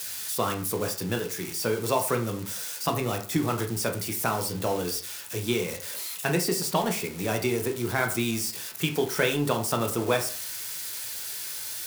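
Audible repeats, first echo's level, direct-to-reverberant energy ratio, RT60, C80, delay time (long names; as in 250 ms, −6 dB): no echo audible, no echo audible, 3.5 dB, 0.45 s, 14.5 dB, no echo audible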